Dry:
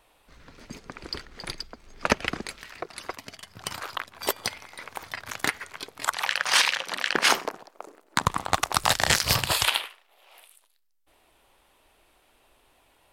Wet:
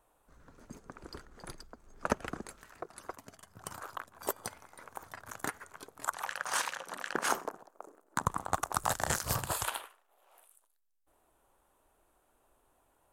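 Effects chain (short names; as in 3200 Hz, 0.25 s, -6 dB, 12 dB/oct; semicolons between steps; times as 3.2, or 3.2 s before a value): band shelf 3200 Hz -11.5 dB; gain -7 dB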